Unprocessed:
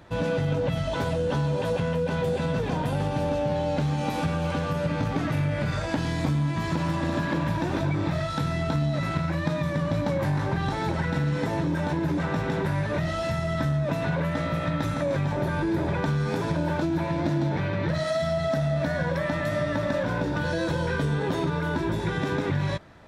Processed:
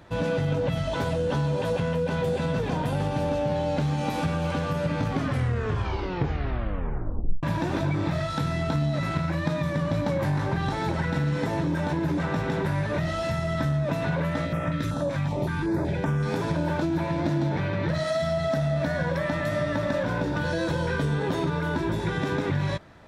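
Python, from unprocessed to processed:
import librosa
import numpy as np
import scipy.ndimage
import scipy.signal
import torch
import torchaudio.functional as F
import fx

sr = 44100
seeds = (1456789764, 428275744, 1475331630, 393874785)

y = fx.filter_held_notch(x, sr, hz=5.3, low_hz=420.0, high_hz=4200.0, at=(14.45, 16.22), fade=0.02)
y = fx.edit(y, sr, fx.tape_stop(start_s=5.08, length_s=2.35), tone=tone)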